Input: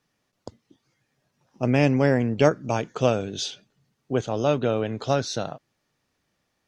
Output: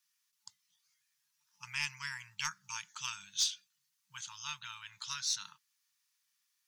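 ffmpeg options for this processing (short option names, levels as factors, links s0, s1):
-af "aderivative,aeval=exprs='0.0891*(cos(1*acos(clip(val(0)/0.0891,-1,1)))-cos(1*PI/2))+0.00251*(cos(2*acos(clip(val(0)/0.0891,-1,1)))-cos(2*PI/2))+0.01*(cos(3*acos(clip(val(0)/0.0891,-1,1)))-cos(3*PI/2))':c=same,afftfilt=real='re*(1-between(b*sr/4096,200,870))':imag='im*(1-between(b*sr/4096,200,870))':win_size=4096:overlap=0.75,volume=1.88"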